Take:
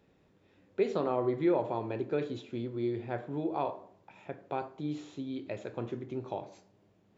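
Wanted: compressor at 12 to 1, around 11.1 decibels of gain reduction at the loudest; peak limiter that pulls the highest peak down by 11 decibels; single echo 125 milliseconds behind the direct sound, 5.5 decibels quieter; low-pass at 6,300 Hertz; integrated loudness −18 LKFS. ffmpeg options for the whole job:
ffmpeg -i in.wav -af "lowpass=6300,acompressor=threshold=-34dB:ratio=12,alimiter=level_in=10.5dB:limit=-24dB:level=0:latency=1,volume=-10.5dB,aecho=1:1:125:0.531,volume=25.5dB" out.wav

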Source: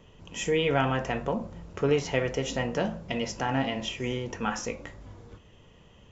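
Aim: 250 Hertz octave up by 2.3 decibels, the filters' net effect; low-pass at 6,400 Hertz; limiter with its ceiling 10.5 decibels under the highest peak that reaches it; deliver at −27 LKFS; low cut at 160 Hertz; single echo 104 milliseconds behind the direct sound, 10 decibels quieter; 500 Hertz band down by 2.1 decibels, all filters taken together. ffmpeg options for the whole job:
ffmpeg -i in.wav -af "highpass=160,lowpass=6400,equalizer=frequency=250:width_type=o:gain=4.5,equalizer=frequency=500:width_type=o:gain=-3.5,alimiter=limit=-20.5dB:level=0:latency=1,aecho=1:1:104:0.316,volume=5.5dB" out.wav

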